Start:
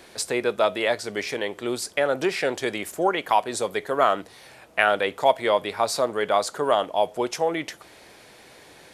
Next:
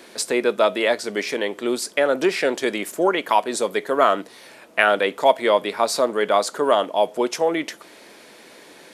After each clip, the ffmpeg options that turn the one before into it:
ffmpeg -i in.wav -af "lowshelf=frequency=150:width_type=q:width=1.5:gain=-12.5,bandreject=frequency=770:width=12,volume=3dB" out.wav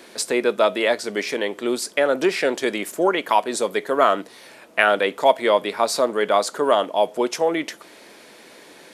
ffmpeg -i in.wav -af anull out.wav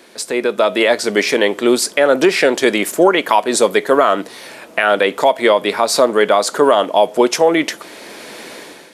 ffmpeg -i in.wav -af "alimiter=limit=-11.5dB:level=0:latency=1:release=172,dynaudnorm=framelen=200:gausssize=5:maxgain=14dB" out.wav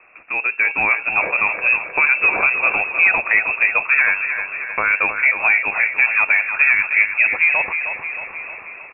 ffmpeg -i in.wav -filter_complex "[0:a]asplit=2[link_01][link_02];[link_02]aecho=0:1:312|624|936|1248|1560|1872|2184:0.398|0.235|0.139|0.0818|0.0482|0.0285|0.0168[link_03];[link_01][link_03]amix=inputs=2:normalize=0,lowpass=frequency=2500:width_type=q:width=0.5098,lowpass=frequency=2500:width_type=q:width=0.6013,lowpass=frequency=2500:width_type=q:width=0.9,lowpass=frequency=2500:width_type=q:width=2.563,afreqshift=-2900,volume=-4dB" out.wav

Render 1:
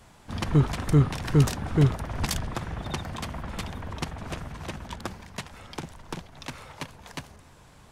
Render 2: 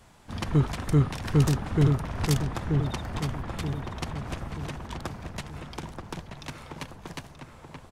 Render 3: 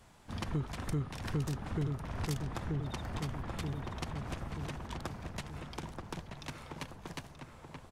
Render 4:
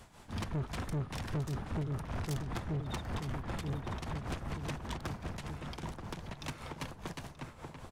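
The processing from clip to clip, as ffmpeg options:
ffmpeg -i in.wav -filter_complex "[0:a]asplit=2[link_01][link_02];[link_02]adelay=930,lowpass=frequency=1600:poles=1,volume=-4dB,asplit=2[link_03][link_04];[link_04]adelay=930,lowpass=frequency=1600:poles=1,volume=0.46,asplit=2[link_05][link_06];[link_06]adelay=930,lowpass=frequency=1600:poles=1,volume=0.46,asplit=2[link_07][link_08];[link_08]adelay=930,lowpass=frequency=1600:poles=1,volume=0.46,asplit=2[link_09][link_10];[link_10]adelay=930,lowpass=frequency=1600:poles=1,volume=0.46,asplit=2[link_11][link_12];[link_12]adelay=930,lowpass=frequency=1600:poles=1,volume=0.46[link_13];[link_01][link_03][link_05][link_07][link_09][link_11][link_13]amix=inputs=7:normalize=0,volume=-2dB" out.wav
ffmpeg -i in.wav -af "acompressor=threshold=-29dB:ratio=3,volume=-4.5dB" out.wav
ffmpeg -i in.wav -af "tremolo=f=5.1:d=0.67,asoftclip=type=tanh:threshold=-37.5dB,volume=6.5dB" out.wav

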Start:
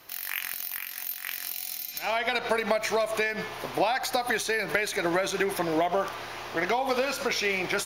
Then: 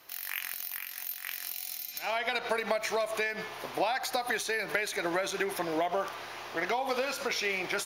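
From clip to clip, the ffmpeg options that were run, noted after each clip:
ffmpeg -i in.wav -af "lowshelf=frequency=210:gain=-7.5,volume=-3.5dB" out.wav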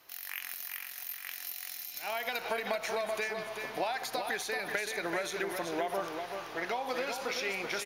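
ffmpeg -i in.wav -af "aecho=1:1:382|764|1146|1528:0.501|0.155|0.0482|0.0149,volume=-4dB" out.wav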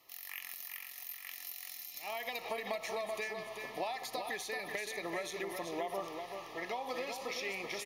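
ffmpeg -i in.wav -af "asuperstop=centerf=1500:order=12:qfactor=4.6,volume=-4.5dB" out.wav

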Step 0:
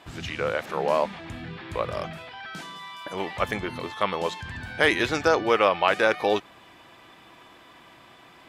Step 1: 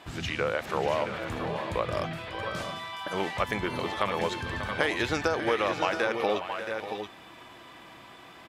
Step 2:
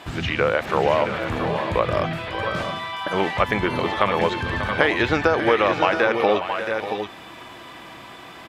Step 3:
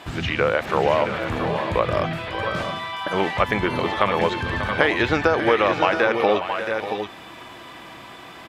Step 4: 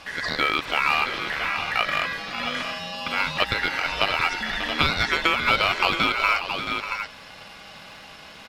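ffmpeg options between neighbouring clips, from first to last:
ffmpeg -i in.wav -filter_complex "[0:a]acompressor=threshold=-24dB:ratio=10,asplit=2[link_01][link_02];[link_02]aecho=0:1:521|590|673|682:0.126|0.266|0.282|0.316[link_03];[link_01][link_03]amix=inputs=2:normalize=0,volume=1dB" out.wav
ffmpeg -i in.wav -filter_complex "[0:a]acrossover=split=3800[link_01][link_02];[link_02]acompressor=threshold=-55dB:ratio=4:attack=1:release=60[link_03];[link_01][link_03]amix=inputs=2:normalize=0,volume=8.5dB" out.wav
ffmpeg -i in.wav -af anull out.wav
ffmpeg -i in.wav -af "aeval=exprs='val(0)*sin(2*PI*1800*n/s)':channel_layout=same,acrusher=bits=7:mode=log:mix=0:aa=0.000001" -ar 44100 -c:a sbc -b:a 128k out.sbc

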